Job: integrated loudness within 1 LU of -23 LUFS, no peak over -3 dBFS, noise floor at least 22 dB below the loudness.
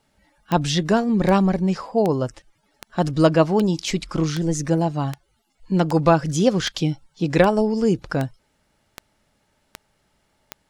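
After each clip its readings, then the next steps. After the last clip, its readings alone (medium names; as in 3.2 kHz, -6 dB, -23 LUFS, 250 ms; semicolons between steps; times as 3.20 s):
clicks found 14; loudness -21.0 LUFS; peak level -3.0 dBFS; loudness target -23.0 LUFS
-> de-click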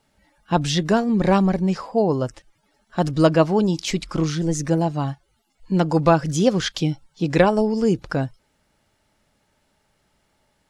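clicks found 0; loudness -21.0 LUFS; peak level -3.0 dBFS; loudness target -23.0 LUFS
-> trim -2 dB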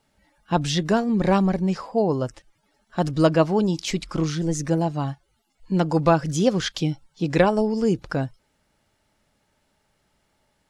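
loudness -23.0 LUFS; peak level -5.0 dBFS; noise floor -70 dBFS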